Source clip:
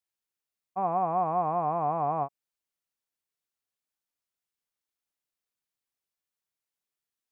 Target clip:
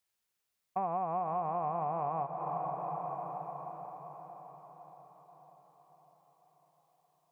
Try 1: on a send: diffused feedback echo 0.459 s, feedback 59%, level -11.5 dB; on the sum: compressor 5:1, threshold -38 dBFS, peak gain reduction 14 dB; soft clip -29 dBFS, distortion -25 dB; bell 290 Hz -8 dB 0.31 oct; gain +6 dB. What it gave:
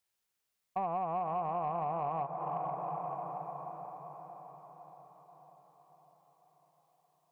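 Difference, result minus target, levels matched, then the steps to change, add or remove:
soft clip: distortion +14 dB
change: soft clip -21.5 dBFS, distortion -39 dB

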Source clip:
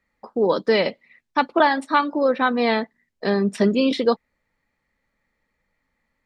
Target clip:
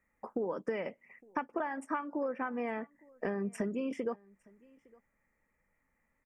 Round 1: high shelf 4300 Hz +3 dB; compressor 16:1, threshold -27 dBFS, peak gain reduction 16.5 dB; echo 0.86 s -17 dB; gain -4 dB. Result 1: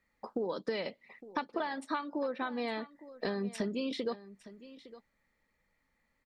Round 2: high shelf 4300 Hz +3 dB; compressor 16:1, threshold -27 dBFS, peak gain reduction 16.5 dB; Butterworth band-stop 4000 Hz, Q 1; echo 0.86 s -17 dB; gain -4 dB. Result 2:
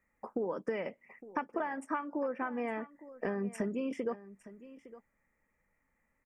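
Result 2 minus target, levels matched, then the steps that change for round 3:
echo-to-direct +9.5 dB
change: echo 0.86 s -26.5 dB

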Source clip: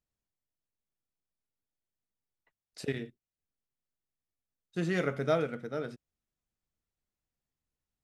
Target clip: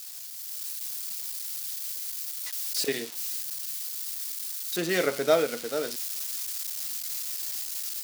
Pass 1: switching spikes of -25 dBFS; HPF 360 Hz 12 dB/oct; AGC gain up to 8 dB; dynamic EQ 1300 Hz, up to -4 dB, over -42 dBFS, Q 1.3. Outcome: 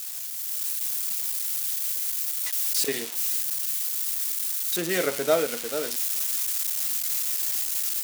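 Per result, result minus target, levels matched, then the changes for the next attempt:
switching spikes: distortion +7 dB; 4000 Hz band -3.0 dB
change: switching spikes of -32 dBFS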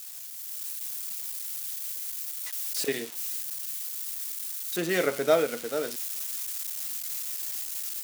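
4000 Hz band -3.0 dB
add after HPF: bell 4700 Hz +5 dB 0.71 oct

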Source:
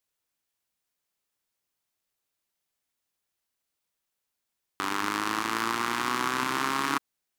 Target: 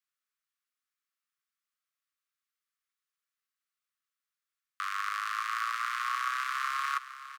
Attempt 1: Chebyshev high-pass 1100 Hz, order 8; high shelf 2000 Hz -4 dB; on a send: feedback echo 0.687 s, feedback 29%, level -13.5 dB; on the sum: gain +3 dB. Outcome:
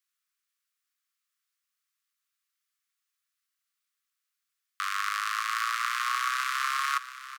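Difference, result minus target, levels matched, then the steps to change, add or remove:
echo 0.225 s late; 4000 Hz band +3.5 dB
change: high shelf 2000 Hz -13 dB; change: feedback echo 0.462 s, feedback 29%, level -13.5 dB

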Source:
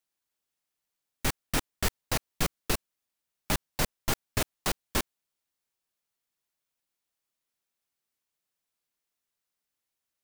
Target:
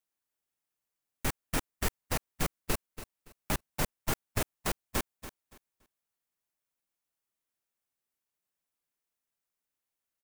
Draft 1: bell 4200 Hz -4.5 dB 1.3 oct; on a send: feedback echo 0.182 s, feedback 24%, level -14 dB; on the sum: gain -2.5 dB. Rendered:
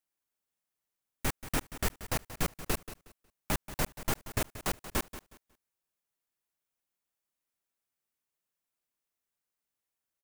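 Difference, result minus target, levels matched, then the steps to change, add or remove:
echo 0.102 s early
change: feedback echo 0.284 s, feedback 24%, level -14 dB

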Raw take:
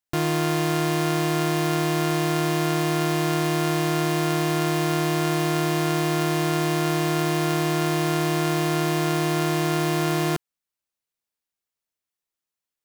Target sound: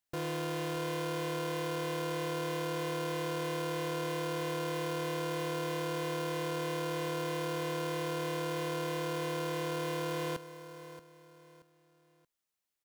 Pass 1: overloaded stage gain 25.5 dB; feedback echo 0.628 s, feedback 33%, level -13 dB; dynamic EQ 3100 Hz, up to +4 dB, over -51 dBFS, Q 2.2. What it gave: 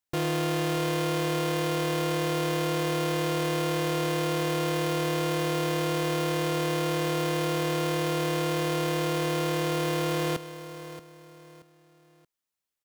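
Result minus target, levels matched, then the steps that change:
overloaded stage: distortion -4 dB
change: overloaded stage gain 35 dB

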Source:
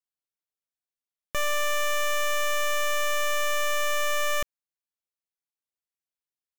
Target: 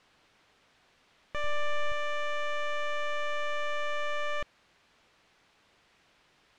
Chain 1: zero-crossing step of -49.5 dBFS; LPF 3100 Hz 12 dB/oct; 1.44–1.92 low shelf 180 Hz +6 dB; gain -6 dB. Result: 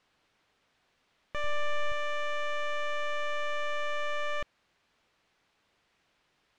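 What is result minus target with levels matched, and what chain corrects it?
zero-crossing step: distortion -7 dB
zero-crossing step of -42.5 dBFS; LPF 3100 Hz 12 dB/oct; 1.44–1.92 low shelf 180 Hz +6 dB; gain -6 dB

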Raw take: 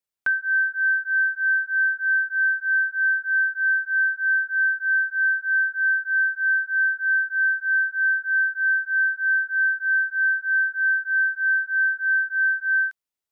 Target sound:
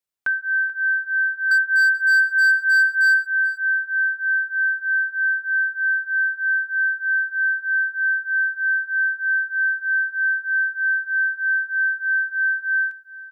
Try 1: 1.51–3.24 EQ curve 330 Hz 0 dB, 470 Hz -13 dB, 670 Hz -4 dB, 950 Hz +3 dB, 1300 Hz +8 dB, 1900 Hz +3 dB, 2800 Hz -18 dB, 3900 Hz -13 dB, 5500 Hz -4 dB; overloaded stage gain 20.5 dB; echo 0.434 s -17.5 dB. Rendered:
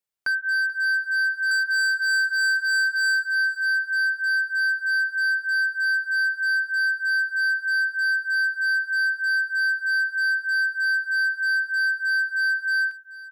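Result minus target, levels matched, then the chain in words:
overloaded stage: distortion +13 dB
1.51–3.24 EQ curve 330 Hz 0 dB, 470 Hz -13 dB, 670 Hz -4 dB, 950 Hz +3 dB, 1300 Hz +8 dB, 1900 Hz +3 dB, 2800 Hz -18 dB, 3900 Hz -13 dB, 5500 Hz -4 dB; overloaded stage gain 13 dB; echo 0.434 s -17.5 dB

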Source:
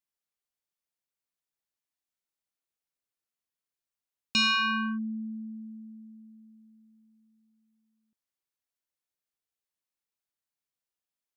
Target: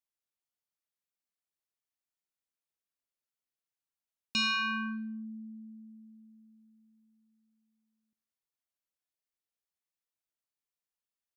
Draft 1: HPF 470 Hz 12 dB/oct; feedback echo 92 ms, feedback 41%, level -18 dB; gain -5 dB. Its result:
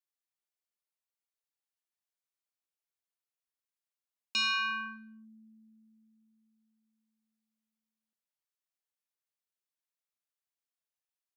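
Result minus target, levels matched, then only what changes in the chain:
500 Hz band -5.0 dB
remove: HPF 470 Hz 12 dB/oct

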